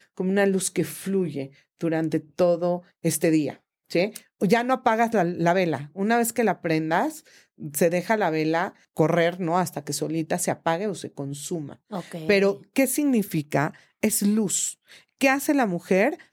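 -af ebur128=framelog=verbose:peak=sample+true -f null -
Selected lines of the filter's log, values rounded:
Integrated loudness:
  I:         -24.2 LUFS
  Threshold: -34.5 LUFS
Loudness range:
  LRA:         2.6 LU
  Threshold: -44.6 LUFS
  LRA low:   -26.0 LUFS
  LRA high:  -23.4 LUFS
Sample peak:
  Peak:       -6.1 dBFS
True peak:
  Peak:       -6.1 dBFS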